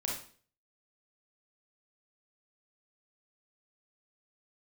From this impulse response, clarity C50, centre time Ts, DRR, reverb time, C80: 2.5 dB, 40 ms, -2.5 dB, 0.45 s, 9.0 dB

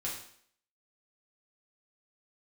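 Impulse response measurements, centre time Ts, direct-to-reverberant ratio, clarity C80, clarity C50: 37 ms, -5.5 dB, 8.0 dB, 4.5 dB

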